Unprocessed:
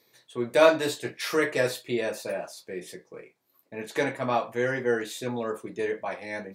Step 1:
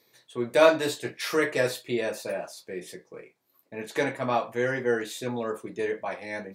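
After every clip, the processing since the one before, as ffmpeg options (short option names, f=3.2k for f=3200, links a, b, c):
-af anull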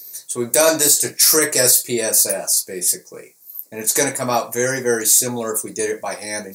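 -af "aexciter=amount=14.3:drive=5.7:freq=5k,alimiter=level_in=7.5dB:limit=-1dB:release=50:level=0:latency=1,volume=-1dB"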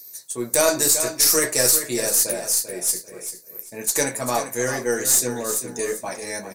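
-filter_complex "[0:a]aeval=exprs='0.841*(cos(1*acos(clip(val(0)/0.841,-1,1)))-cos(1*PI/2))+0.0841*(cos(2*acos(clip(val(0)/0.841,-1,1)))-cos(2*PI/2))+0.0531*(cos(3*acos(clip(val(0)/0.841,-1,1)))-cos(3*PI/2))':c=same,asplit=2[a][b];[b]aecho=0:1:392|784|1176:0.316|0.0854|0.0231[c];[a][c]amix=inputs=2:normalize=0,volume=-3dB"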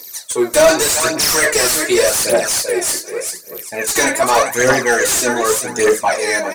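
-filter_complex "[0:a]aphaser=in_gain=1:out_gain=1:delay=3.5:decay=0.62:speed=0.85:type=triangular,asplit=2[a][b];[b]highpass=f=720:p=1,volume=24dB,asoftclip=type=tanh:threshold=0dB[c];[a][c]amix=inputs=2:normalize=0,lowpass=f=2.8k:p=1,volume=-6dB,volume=-1dB"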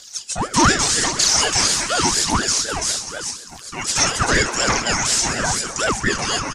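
-filter_complex "[0:a]highpass=400,equalizer=f=480:t=q:w=4:g=-5,equalizer=f=1.6k:t=q:w=4:g=-8,equalizer=f=5.9k:t=q:w=4:g=7,lowpass=f=8k:w=0.5412,lowpass=f=8k:w=1.3066,asplit=6[a][b][c][d][e][f];[b]adelay=130,afreqshift=66,volume=-13dB[g];[c]adelay=260,afreqshift=132,volume=-19dB[h];[d]adelay=390,afreqshift=198,volume=-25dB[i];[e]adelay=520,afreqshift=264,volume=-31.1dB[j];[f]adelay=650,afreqshift=330,volume=-37.1dB[k];[a][g][h][i][j][k]amix=inputs=6:normalize=0,aeval=exprs='val(0)*sin(2*PI*680*n/s+680*0.6/4.1*sin(2*PI*4.1*n/s))':c=same"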